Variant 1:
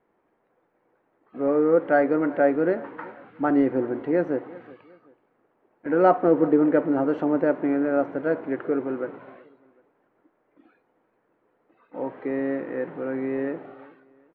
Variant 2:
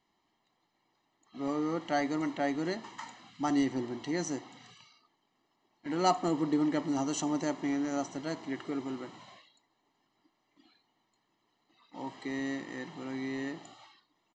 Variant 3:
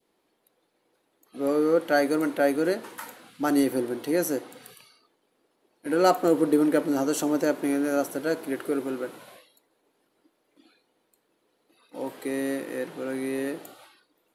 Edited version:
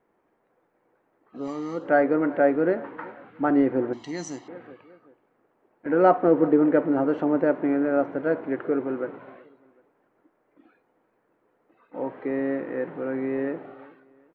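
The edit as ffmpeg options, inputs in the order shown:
-filter_complex "[1:a]asplit=2[a][b];[0:a]asplit=3[c][d][e];[c]atrim=end=1.48[f];[a]atrim=start=1.32:end=1.9[g];[d]atrim=start=1.74:end=3.932[h];[b]atrim=start=3.928:end=4.482[i];[e]atrim=start=4.478[j];[f][g]acrossfade=d=0.16:c1=tri:c2=tri[k];[k][h]acrossfade=d=0.16:c1=tri:c2=tri[l];[l][i]acrossfade=d=0.004:c1=hsin:c2=hsin[m];[m][j]acrossfade=d=0.004:c1=hsin:c2=hsin"

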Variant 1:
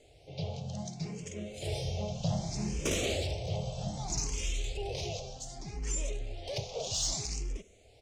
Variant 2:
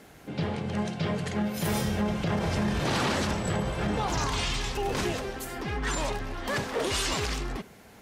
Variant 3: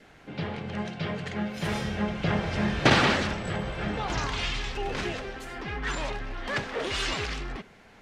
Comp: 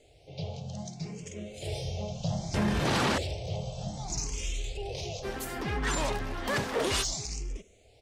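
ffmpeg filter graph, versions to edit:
-filter_complex "[1:a]asplit=2[a][b];[0:a]asplit=3[c][d][e];[c]atrim=end=2.542[f];[a]atrim=start=2.538:end=3.182[g];[d]atrim=start=3.178:end=5.26[h];[b]atrim=start=5.22:end=7.05[i];[e]atrim=start=7.01[j];[f][g]acrossfade=d=0.004:c1=hsin:c2=hsin[k];[k][h]acrossfade=d=0.004:c1=hsin:c2=hsin[l];[l][i]acrossfade=d=0.04:c1=tri:c2=tri[m];[m][j]acrossfade=d=0.04:c1=tri:c2=tri"

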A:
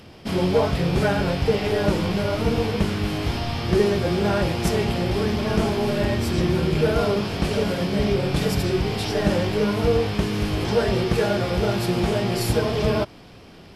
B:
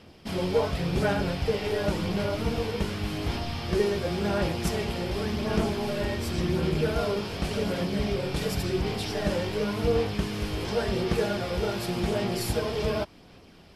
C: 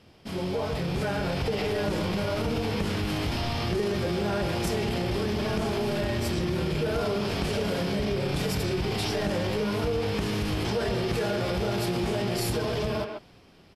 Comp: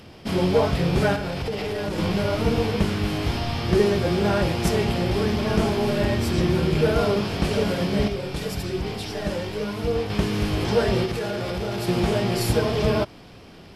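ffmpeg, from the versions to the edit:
-filter_complex "[2:a]asplit=2[a][b];[0:a]asplit=4[c][d][e][f];[c]atrim=end=1.162[g];[a]atrim=start=1.158:end=1.982[h];[d]atrim=start=1.978:end=8.082[i];[1:a]atrim=start=8.078:end=10.102[j];[e]atrim=start=10.098:end=11.062[k];[b]atrim=start=11.058:end=11.882[l];[f]atrim=start=11.878[m];[g][h]acrossfade=d=0.004:c1=hsin:c2=hsin[n];[n][i]acrossfade=d=0.004:c1=hsin:c2=hsin[o];[o][j]acrossfade=d=0.004:c1=hsin:c2=hsin[p];[p][k]acrossfade=d=0.004:c1=hsin:c2=hsin[q];[q][l]acrossfade=d=0.004:c1=hsin:c2=hsin[r];[r][m]acrossfade=d=0.004:c1=hsin:c2=hsin"

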